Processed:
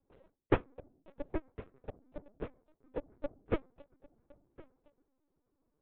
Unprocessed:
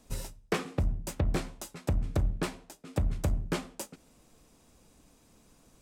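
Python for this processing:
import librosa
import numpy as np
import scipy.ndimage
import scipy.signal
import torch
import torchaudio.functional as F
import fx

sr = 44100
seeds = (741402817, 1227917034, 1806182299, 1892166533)

y = fx.wiener(x, sr, points=15)
y = fx.env_lowpass_down(y, sr, base_hz=2000.0, full_db=-24.0)
y = fx.dynamic_eq(y, sr, hz=600.0, q=4.5, threshold_db=-54.0, ratio=4.0, max_db=5)
y = fx.tremolo(y, sr, hz=8.0, depth=0.41, at=(0.6, 3.04))
y = fx.ladder_highpass(y, sr, hz=240.0, resonance_pct=40)
y = fx.air_absorb(y, sr, metres=190.0)
y = y + 10.0 ** (-8.5 / 20.0) * np.pad(y, (int(1064 * sr / 1000.0), 0))[:len(y)]
y = fx.lpc_vocoder(y, sr, seeds[0], excitation='pitch_kept', order=10)
y = fx.upward_expand(y, sr, threshold_db=-45.0, expansion=2.5)
y = y * librosa.db_to_amplitude(11.0)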